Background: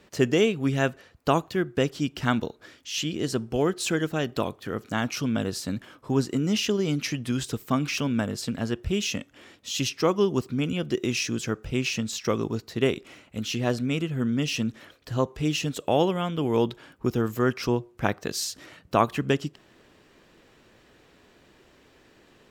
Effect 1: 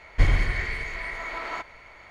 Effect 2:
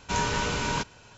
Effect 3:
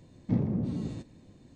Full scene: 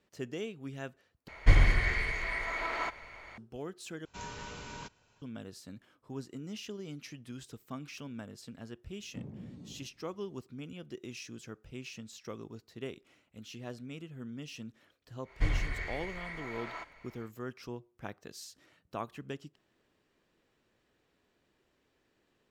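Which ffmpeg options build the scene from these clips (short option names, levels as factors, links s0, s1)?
-filter_complex "[1:a]asplit=2[s0][s1];[0:a]volume=0.133,asplit=3[s2][s3][s4];[s2]atrim=end=1.284[s5];[s0]atrim=end=2.1,asetpts=PTS-STARTPTS,volume=0.841[s6];[s3]atrim=start=3.376:end=4.054[s7];[2:a]atrim=end=1.17,asetpts=PTS-STARTPTS,volume=0.15[s8];[s4]atrim=start=5.216[s9];[3:a]atrim=end=1.55,asetpts=PTS-STARTPTS,volume=0.158,afade=t=in:d=0.004:c=hsin,afade=t=out:st=1.546:d=0.004:c=hsin,adelay=8850[s10];[s1]atrim=end=2.1,asetpts=PTS-STARTPTS,volume=0.316,afade=t=in:d=0.1,afade=t=out:st=2:d=0.1,adelay=15220[s11];[s5][s6]acrossfade=d=0.004:c1=hsin:c2=hsin[s12];[s12][s7]acrossfade=d=0.004:c1=hsin:c2=hsin[s13];[s13][s8]acrossfade=d=0.004:c1=hsin:c2=hsin[s14];[s14][s9]acrossfade=d=0.004:c1=hsin:c2=hsin[s15];[s15][s10][s11]amix=inputs=3:normalize=0"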